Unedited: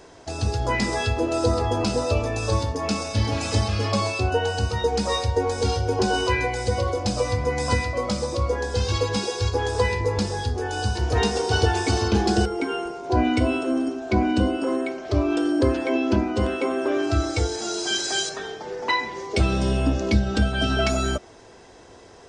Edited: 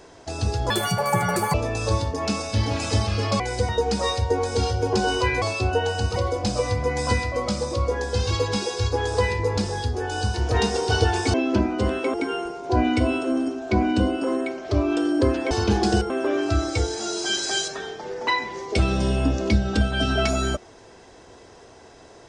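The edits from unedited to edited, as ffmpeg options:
-filter_complex "[0:a]asplit=11[s0][s1][s2][s3][s4][s5][s6][s7][s8][s9][s10];[s0]atrim=end=0.704[s11];[s1]atrim=start=0.7:end=2.15,asetpts=PTS-STARTPTS,asetrate=76293,aresample=44100,atrim=end_sample=36962,asetpts=PTS-STARTPTS[s12];[s2]atrim=start=2.146:end=4.012[s13];[s3]atrim=start=6.478:end=6.772[s14];[s4]atrim=start=4.748:end=6.482[s15];[s5]atrim=start=4.008:end=4.752[s16];[s6]atrim=start=6.768:end=11.952[s17];[s7]atrim=start=15.908:end=16.712[s18];[s8]atrim=start=12.538:end=15.912[s19];[s9]atrim=start=11.948:end=12.542[s20];[s10]atrim=start=16.708[s21];[s11][s12]acrossfade=d=0.004:c1=hsin:c2=hsin[s22];[s22][s13]acrossfade=d=0.004:c1=hsin:c2=hsin[s23];[s23][s14]acrossfade=d=0.004:c1=hsin:c2=hsin[s24];[s24][s15]acrossfade=d=0.004:c1=hsin:c2=hsin[s25];[s25][s16]acrossfade=d=0.004:c1=hsin:c2=hsin[s26];[s26][s17]acrossfade=d=0.004:c1=hsin:c2=hsin[s27];[s27][s18]acrossfade=d=0.004:c1=hsin:c2=hsin[s28];[s28][s19]acrossfade=d=0.004:c1=hsin:c2=hsin[s29];[s29][s20]acrossfade=d=0.004:c1=hsin:c2=hsin[s30];[s30][s21]acrossfade=d=0.004:c1=hsin:c2=hsin"

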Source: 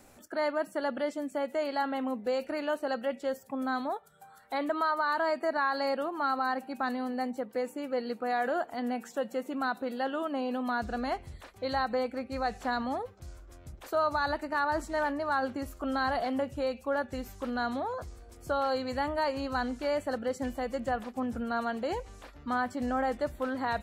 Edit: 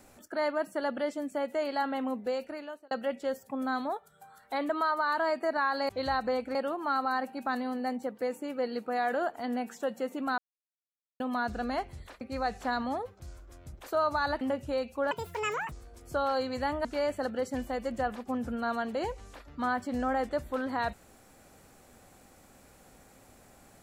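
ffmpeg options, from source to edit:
-filter_complex "[0:a]asplit=11[s0][s1][s2][s3][s4][s5][s6][s7][s8][s9][s10];[s0]atrim=end=2.91,asetpts=PTS-STARTPTS,afade=t=out:st=2.19:d=0.72[s11];[s1]atrim=start=2.91:end=5.892,asetpts=PTS-STARTPTS,afade=t=in:d=0.004:c=hsin[s12];[s2]atrim=start=11.548:end=12.212[s13];[s3]atrim=start=5.888:end=9.72,asetpts=PTS-STARTPTS,afade=t=out:st=3.828:d=0.004:c=hsin[s14];[s4]atrim=start=9.72:end=10.54,asetpts=PTS-STARTPTS,volume=0[s15];[s5]atrim=start=10.54:end=11.552,asetpts=PTS-STARTPTS,afade=t=in:d=0.004:c=hsin[s16];[s6]atrim=start=12.208:end=14.412[s17];[s7]atrim=start=16.298:end=17.004[s18];[s8]atrim=start=17:end=18.07,asetpts=PTS-STARTPTS,asetrate=77616,aresample=44100[s19];[s9]atrim=start=18.066:end=19.202[s20];[s10]atrim=start=19.728[s21];[s11][s12]concat=n=2:v=0:a=1[s22];[s22][s13]acrossfade=d=0.004:c1=hsin:c2=hsin[s23];[s14][s15][s16]concat=n=3:v=0:a=1[s24];[s23][s24]acrossfade=d=0.004:c1=hsin:c2=hsin[s25];[s25][s17]acrossfade=d=0.004:c1=hsin:c2=hsin[s26];[s26][s18]acrossfade=d=0.004:c1=hsin:c2=hsin[s27];[s27][s19]acrossfade=d=0.004:c1=hsin:c2=hsin[s28];[s28][s20]acrossfade=d=0.004:c1=hsin:c2=hsin[s29];[s29][s21]acrossfade=d=0.004:c1=hsin:c2=hsin"

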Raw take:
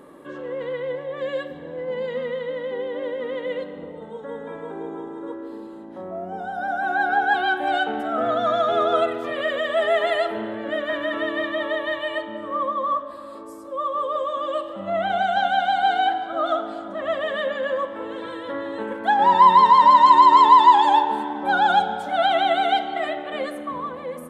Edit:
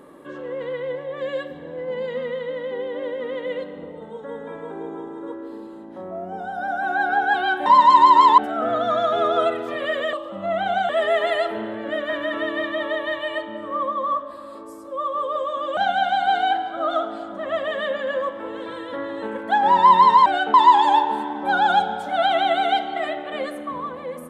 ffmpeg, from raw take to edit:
-filter_complex "[0:a]asplit=8[s0][s1][s2][s3][s4][s5][s6][s7];[s0]atrim=end=7.662[s8];[s1]atrim=start=19.818:end=20.542[s9];[s2]atrim=start=7.938:end=9.692[s10];[s3]atrim=start=14.568:end=15.332[s11];[s4]atrim=start=9.688:end=14.572[s12];[s5]atrim=start=15.328:end=19.822[s13];[s6]atrim=start=7.658:end=7.942[s14];[s7]atrim=start=20.538[s15];[s8][s9]acrossfade=d=0.004:c1=hsin:c2=hsin[s16];[s16][s10]acrossfade=d=0.004:c1=hsin:c2=hsin[s17];[s17][s11]acrossfade=d=0.004:c1=hsin:c2=hsin[s18];[s18][s12]acrossfade=d=0.004:c1=hsin:c2=hsin[s19];[s19][s13]acrossfade=d=0.004:c1=hsin:c2=hsin[s20];[s20][s14]acrossfade=d=0.004:c1=hsin:c2=hsin[s21];[s21][s15]acrossfade=d=0.004:c1=hsin:c2=hsin"

